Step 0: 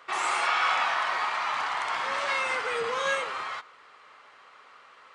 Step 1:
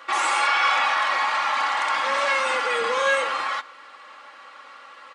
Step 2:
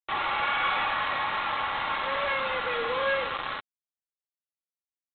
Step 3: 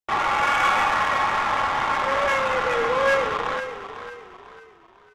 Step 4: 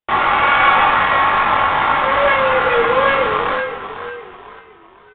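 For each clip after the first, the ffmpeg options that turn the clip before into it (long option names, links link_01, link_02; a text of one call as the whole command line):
ffmpeg -i in.wav -filter_complex "[0:a]highpass=frequency=190:poles=1,aecho=1:1:3.6:0.73,asplit=2[link_01][link_02];[link_02]alimiter=limit=-23.5dB:level=0:latency=1,volume=1.5dB[link_03];[link_01][link_03]amix=inputs=2:normalize=0" out.wav
ffmpeg -i in.wav -af "equalizer=frequency=550:width=1.3:gain=2.5,aresample=8000,acrusher=bits=3:mix=0:aa=0.5,aresample=44100,volume=-7dB" out.wav
ffmpeg -i in.wav -filter_complex "[0:a]asplit=2[link_01][link_02];[link_02]adynamicsmooth=sensitivity=3:basefreq=590,volume=3dB[link_03];[link_01][link_03]amix=inputs=2:normalize=0,asplit=5[link_04][link_05][link_06][link_07][link_08];[link_05]adelay=498,afreqshift=-32,volume=-11dB[link_09];[link_06]adelay=996,afreqshift=-64,volume=-19.4dB[link_10];[link_07]adelay=1494,afreqshift=-96,volume=-27.8dB[link_11];[link_08]adelay=1992,afreqshift=-128,volume=-36.2dB[link_12];[link_04][link_09][link_10][link_11][link_12]amix=inputs=5:normalize=0" out.wav
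ffmpeg -i in.wav -filter_complex "[0:a]asplit=2[link_01][link_02];[link_02]adelay=21,volume=-5dB[link_03];[link_01][link_03]amix=inputs=2:normalize=0,aresample=8000,aresample=44100,volume=6.5dB" out.wav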